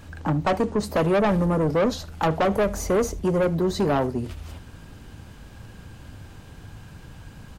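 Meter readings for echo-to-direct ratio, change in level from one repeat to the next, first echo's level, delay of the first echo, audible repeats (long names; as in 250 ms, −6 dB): −22.0 dB, repeats not evenly spaced, −22.0 dB, 76 ms, 1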